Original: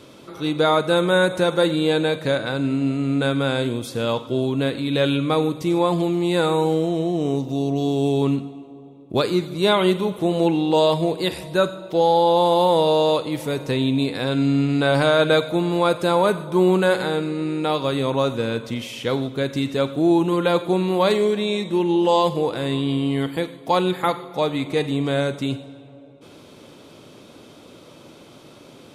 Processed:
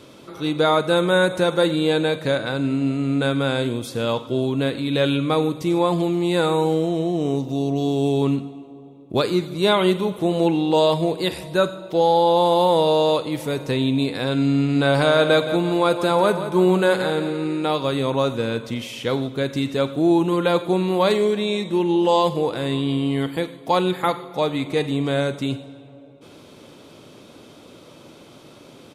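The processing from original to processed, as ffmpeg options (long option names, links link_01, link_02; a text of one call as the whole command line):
ffmpeg -i in.wav -filter_complex "[0:a]asplit=3[link_01][link_02][link_03];[link_01]afade=type=out:start_time=14.75:duration=0.02[link_04];[link_02]aecho=1:1:170|340|510|680|850:0.266|0.125|0.0588|0.0276|0.013,afade=type=in:start_time=14.75:duration=0.02,afade=type=out:start_time=17.66:duration=0.02[link_05];[link_03]afade=type=in:start_time=17.66:duration=0.02[link_06];[link_04][link_05][link_06]amix=inputs=3:normalize=0" out.wav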